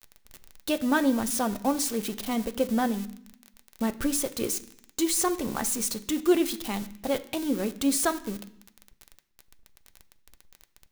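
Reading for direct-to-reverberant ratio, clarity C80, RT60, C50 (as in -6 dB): 7.5 dB, 19.0 dB, 0.65 s, 16.5 dB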